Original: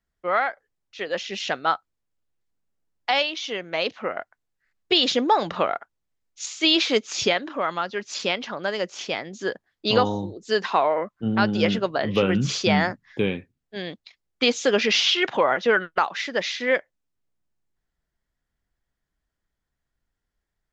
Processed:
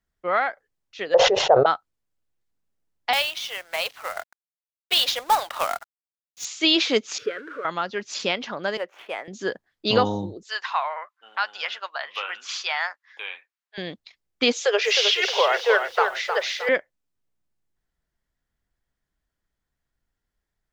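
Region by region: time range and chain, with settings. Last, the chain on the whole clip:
1.14–1.66 EQ curve 140 Hz 0 dB, 220 Hz -24 dB, 470 Hz +14 dB, 910 Hz +11 dB, 2300 Hz -24 dB + sustainer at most 39 dB/s
3.13–6.45 HPF 660 Hz 24 dB/oct + companded quantiser 4-bit
7.18–7.65 zero-crossing step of -25 dBFS + double band-pass 810 Hz, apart 1.7 oct
8.77–9.28 median filter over 9 samples + three-band isolator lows -22 dB, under 430 Hz, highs -16 dB, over 3000 Hz
10.43–13.78 HPF 900 Hz 24 dB/oct + high shelf 5100 Hz -7 dB
14.53–16.69 steep high-pass 400 Hz 96 dB/oct + lo-fi delay 0.311 s, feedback 35%, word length 8-bit, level -6.5 dB
whole clip: dry

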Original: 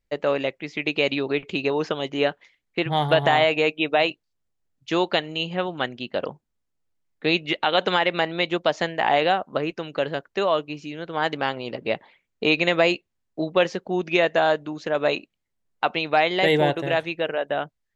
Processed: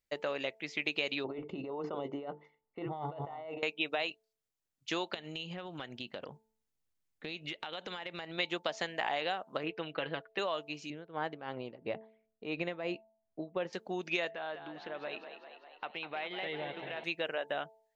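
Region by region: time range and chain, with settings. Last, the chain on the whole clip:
1.24–3.63 notches 50/100/150/200/250/300/350/400/450/500 Hz + negative-ratio compressor -29 dBFS + polynomial smoothing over 65 samples
5.14–8.38 compressor 10:1, threshold -31 dBFS + low shelf 190 Hz +9.5 dB
9.63–10.39 LPF 3500 Hz 24 dB/oct + comb 6.2 ms, depth 54%
10.9–13.73 LPF 1600 Hz 6 dB/oct + tilt -2 dB/oct + tremolo 2.9 Hz, depth 79%
14.31–17.04 LPF 3500 Hz 24 dB/oct + compressor 2:1, threshold -38 dBFS + frequency-shifting echo 0.2 s, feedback 64%, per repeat +40 Hz, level -9.5 dB
whole clip: compressor, threshold -23 dBFS; tilt +2 dB/oct; de-hum 220.4 Hz, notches 4; gain -7 dB

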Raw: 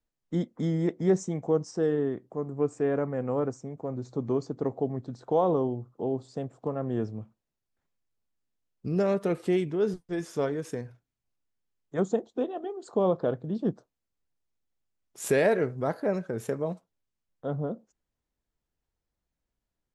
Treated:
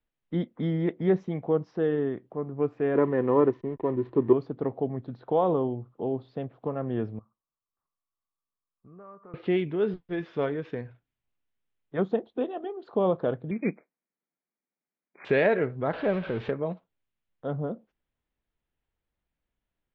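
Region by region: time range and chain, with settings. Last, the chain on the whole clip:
2.95–4.33 backlash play -48.5 dBFS + small resonant body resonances 360/990/1800 Hz, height 13 dB, ringing for 25 ms
7.19–9.34 ladder low-pass 1200 Hz, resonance 85% + compressor 2:1, threshold -55 dBFS
13.51–15.25 sample sorter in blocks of 16 samples + brick-wall FIR band-pass 150–2500 Hz
15.93–16.51 zero-crossing step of -35.5 dBFS + LPF 7100 Hz
whole clip: steep low-pass 3700 Hz 36 dB/oct; bell 2400 Hz +3.5 dB 1.6 oct

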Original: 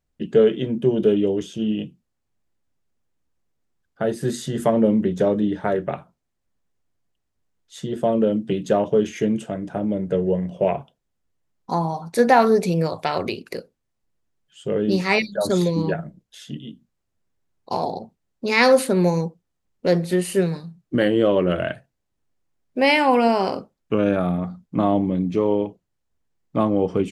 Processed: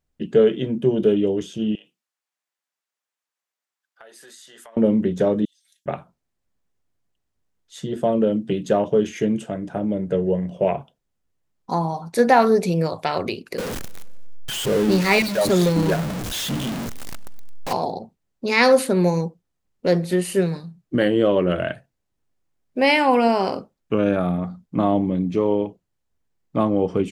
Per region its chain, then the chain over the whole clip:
1.75–4.77 HPF 1000 Hz + compressor, threshold -43 dBFS
5.45–5.86 inverse Chebyshev high-pass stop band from 1200 Hz, stop band 70 dB + comb 3.7 ms, depth 73%
13.58–17.73 zero-crossing step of -22 dBFS + warbling echo 96 ms, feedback 65%, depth 127 cents, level -23 dB
whole clip: dry

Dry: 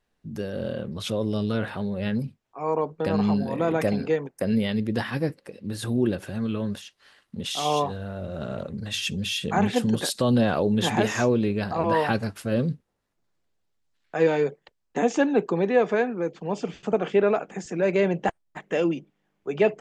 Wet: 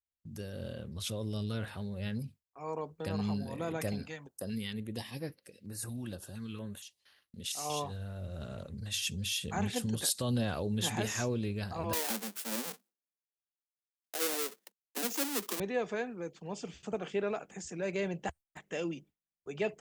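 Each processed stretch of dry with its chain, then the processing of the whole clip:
4.03–7.7 low shelf 120 Hz -10 dB + stepped notch 4.3 Hz 410–7700 Hz
11.93–15.6 half-waves squared off + steep high-pass 190 Hz 96 dB/oct + compressor 1.5:1, threshold -32 dBFS
whole clip: pre-emphasis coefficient 0.8; gate with hold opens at -54 dBFS; bell 73 Hz +14.5 dB 1.3 oct

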